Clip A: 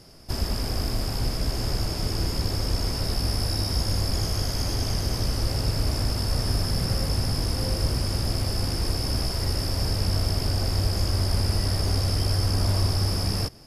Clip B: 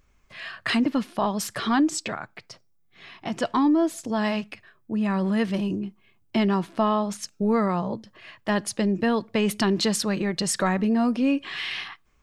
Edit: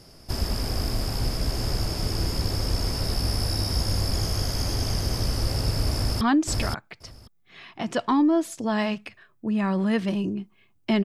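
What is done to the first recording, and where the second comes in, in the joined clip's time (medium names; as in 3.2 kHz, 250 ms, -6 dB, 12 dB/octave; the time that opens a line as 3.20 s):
clip A
5.94–6.21 s: echo throw 530 ms, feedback 10%, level -2 dB
6.21 s: go over to clip B from 1.67 s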